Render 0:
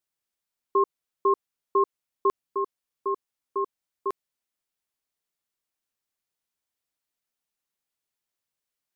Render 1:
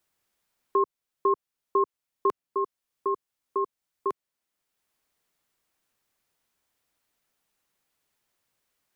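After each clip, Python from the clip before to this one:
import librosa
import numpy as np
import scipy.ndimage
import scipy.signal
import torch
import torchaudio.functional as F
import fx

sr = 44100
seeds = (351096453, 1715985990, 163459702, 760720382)

y = fx.band_squash(x, sr, depth_pct=40)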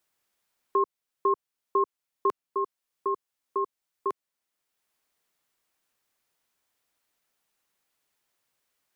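y = fx.low_shelf(x, sr, hz=270.0, db=-5.5)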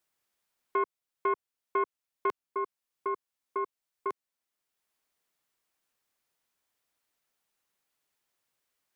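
y = fx.self_delay(x, sr, depth_ms=0.12)
y = F.gain(torch.from_numpy(y), -3.5).numpy()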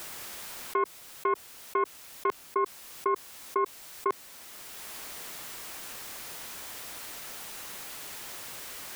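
y = fx.env_flatten(x, sr, amount_pct=100)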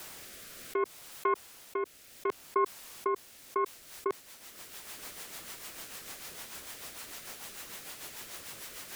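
y = fx.rotary_switch(x, sr, hz=0.65, then_hz=6.7, switch_at_s=3.33)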